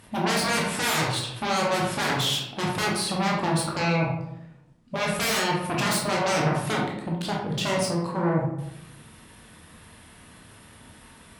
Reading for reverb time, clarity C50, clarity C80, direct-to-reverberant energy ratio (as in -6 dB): 0.85 s, 3.0 dB, 6.5 dB, -3.0 dB